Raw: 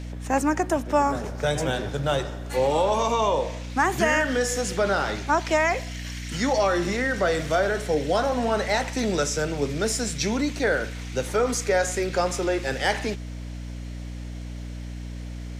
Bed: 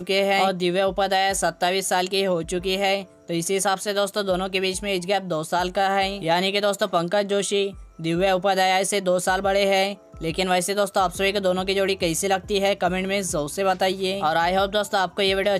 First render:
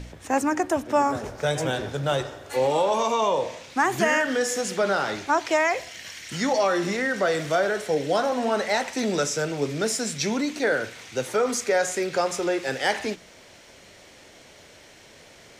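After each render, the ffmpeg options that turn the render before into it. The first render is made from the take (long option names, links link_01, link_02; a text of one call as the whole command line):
ffmpeg -i in.wav -af "bandreject=frequency=60:width_type=h:width=4,bandreject=frequency=120:width_type=h:width=4,bandreject=frequency=180:width_type=h:width=4,bandreject=frequency=240:width_type=h:width=4,bandreject=frequency=300:width_type=h:width=4" out.wav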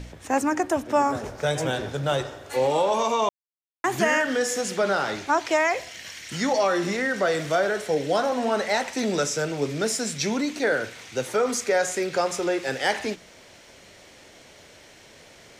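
ffmpeg -i in.wav -filter_complex "[0:a]asplit=3[link_01][link_02][link_03];[link_01]atrim=end=3.29,asetpts=PTS-STARTPTS,afade=type=out:start_time=3.286:duration=0.004:curve=hsin[link_04];[link_02]atrim=start=3.29:end=3.84,asetpts=PTS-STARTPTS,volume=0[link_05];[link_03]atrim=start=3.84,asetpts=PTS-STARTPTS,afade=type=in:duration=0.004:curve=hsin[link_06];[link_04][link_05][link_06]concat=n=3:v=0:a=1" out.wav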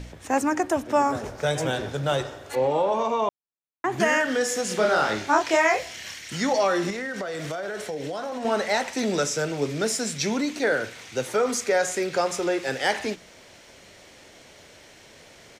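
ffmpeg -i in.wav -filter_complex "[0:a]asettb=1/sr,asplit=3[link_01][link_02][link_03];[link_01]atrim=end=2.554[link_04];[link_02]atrim=start=2.55:end=4,asetpts=PTS-STARTPTS,afade=type=in:duration=0.004:curve=qsin,afade=type=out:start_time=1.446:duration=0.004:curve=qsin,lowpass=frequency=1500:poles=1[link_05];[link_03]atrim=start=3.996[link_06];[link_04][link_05]acrossfade=duration=0.004:curve1=hsin:curve2=qsin[link_07];[link_07][link_06]acrossfade=duration=0.004:curve1=qsin:curve2=hsin,asplit=3[link_08][link_09][link_10];[link_08]afade=type=out:start_time=4.69:duration=0.02[link_11];[link_09]asplit=2[link_12][link_13];[link_13]adelay=28,volume=-2dB[link_14];[link_12][link_14]amix=inputs=2:normalize=0,afade=type=in:start_time=4.69:duration=0.02,afade=type=out:start_time=6.15:duration=0.02[link_15];[link_10]afade=type=in:start_time=6.15:duration=0.02[link_16];[link_11][link_15][link_16]amix=inputs=3:normalize=0,asettb=1/sr,asplit=3[link_17][link_18][link_19];[link_17]atrim=end=6.904[link_20];[link_18]atrim=start=6.9:end=8.45,asetpts=PTS-STARTPTS,afade=type=in:duration=0.004:curve=qsin,afade=type=out:start_time=1.546:duration=0.004:curve=qsin,acompressor=threshold=-27dB:ratio=10:attack=3.2:release=140:knee=1:detection=peak[link_21];[link_19]atrim=start=8.446[link_22];[link_20][link_21]acrossfade=duration=0.004:curve1=hsin:curve2=qsin[link_23];[link_23][link_22]acrossfade=duration=0.004:curve1=qsin:curve2=hsin" out.wav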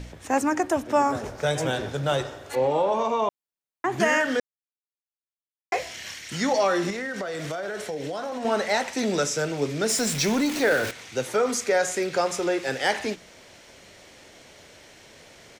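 ffmpeg -i in.wav -filter_complex "[0:a]asettb=1/sr,asplit=3[link_01][link_02][link_03];[link_01]atrim=end=9.894[link_04];[link_02]atrim=start=9.89:end=10.91,asetpts=PTS-STARTPTS,afade=type=in:duration=0.004:curve=qsin,afade=type=out:start_time=1.016:duration=0.004:curve=qsin,aeval=exprs='val(0)+0.5*0.0422*sgn(val(0))':channel_layout=same[link_05];[link_03]atrim=start=10.906[link_06];[link_04][link_05]acrossfade=duration=0.004:curve1=hsin:curve2=qsin[link_07];[link_07][link_06]acrossfade=duration=0.004:curve1=qsin:curve2=hsin,asplit=3[link_08][link_09][link_10];[link_08]atrim=end=4.4,asetpts=PTS-STARTPTS,afade=type=out:start_time=4.396:duration=0.004:curve=hsin[link_11];[link_09]atrim=start=4.4:end=5.72,asetpts=PTS-STARTPTS,volume=0[link_12];[link_10]atrim=start=5.72,asetpts=PTS-STARTPTS,afade=type=in:duration=0.004:curve=hsin[link_13];[link_11][link_12][link_13]concat=n=3:v=0:a=1" out.wav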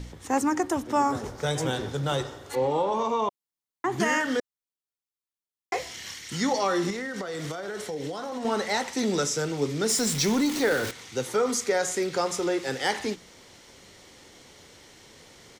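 ffmpeg -i in.wav -af "equalizer=frequency=630:width_type=o:width=0.33:gain=-9,equalizer=frequency=1600:width_type=o:width=0.33:gain=-5,equalizer=frequency=2500:width_type=o:width=0.33:gain=-6" out.wav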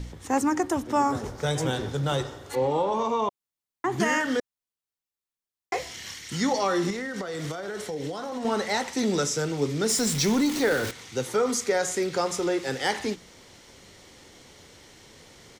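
ffmpeg -i in.wav -af "lowshelf=frequency=180:gain=3.5" out.wav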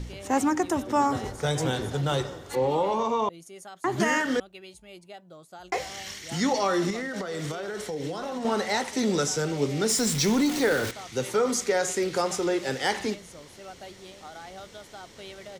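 ffmpeg -i in.wav -i bed.wav -filter_complex "[1:a]volume=-22.5dB[link_01];[0:a][link_01]amix=inputs=2:normalize=0" out.wav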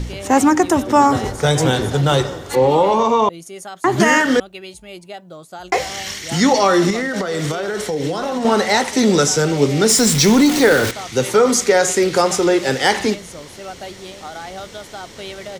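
ffmpeg -i in.wav -af "volume=11dB,alimiter=limit=-2dB:level=0:latency=1" out.wav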